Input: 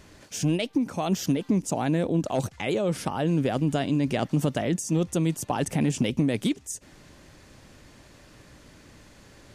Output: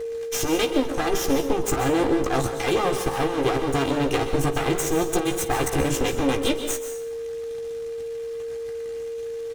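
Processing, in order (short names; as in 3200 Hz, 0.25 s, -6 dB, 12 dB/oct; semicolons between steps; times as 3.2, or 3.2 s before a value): minimum comb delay 2.5 ms; notch 4700 Hz, Q 11; in parallel at +2 dB: compressor, threshold -39 dBFS, peak gain reduction 16.5 dB; on the sum: soft clip -25 dBFS, distortion -11 dB; power-law curve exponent 2; whine 460 Hz -39 dBFS; on a send: early reflections 15 ms -6.5 dB, 53 ms -17.5 dB; on the sum: plate-style reverb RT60 0.64 s, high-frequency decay 0.85×, pre-delay 0.115 s, DRR 8 dB; mismatched tape noise reduction encoder only; gain +9 dB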